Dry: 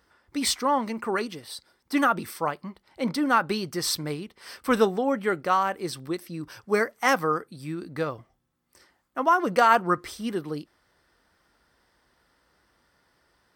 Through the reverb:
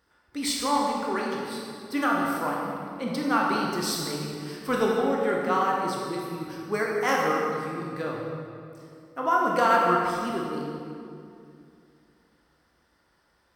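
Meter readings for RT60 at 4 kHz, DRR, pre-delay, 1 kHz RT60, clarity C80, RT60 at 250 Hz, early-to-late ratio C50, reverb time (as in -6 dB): 1.7 s, -2.5 dB, 18 ms, 2.3 s, 1.0 dB, 3.0 s, 0.0 dB, 2.5 s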